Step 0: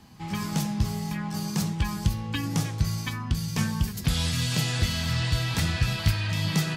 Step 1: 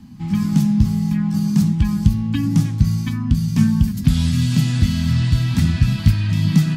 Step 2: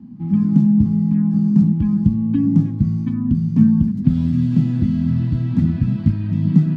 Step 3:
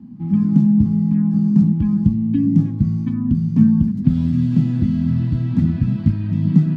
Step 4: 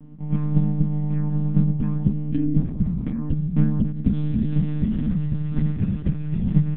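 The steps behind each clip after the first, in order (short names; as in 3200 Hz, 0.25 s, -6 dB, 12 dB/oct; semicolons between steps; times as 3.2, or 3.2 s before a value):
resonant low shelf 330 Hz +9.5 dB, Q 3; gain -1 dB
band-pass 270 Hz, Q 1.2; gain +5 dB
spectral gain 2.12–2.58, 380–1700 Hz -8 dB
monotone LPC vocoder at 8 kHz 150 Hz; gain -4.5 dB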